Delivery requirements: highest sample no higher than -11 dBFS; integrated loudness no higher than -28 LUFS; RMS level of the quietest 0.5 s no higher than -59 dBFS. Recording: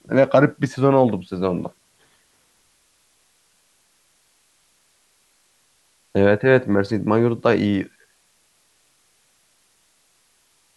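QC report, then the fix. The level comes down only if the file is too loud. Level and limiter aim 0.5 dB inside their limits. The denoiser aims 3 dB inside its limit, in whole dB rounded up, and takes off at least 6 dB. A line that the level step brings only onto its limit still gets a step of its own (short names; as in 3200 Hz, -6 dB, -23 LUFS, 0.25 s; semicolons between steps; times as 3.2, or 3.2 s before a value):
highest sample -3.0 dBFS: fail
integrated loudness -19.0 LUFS: fail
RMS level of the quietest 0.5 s -62 dBFS: OK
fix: gain -9.5 dB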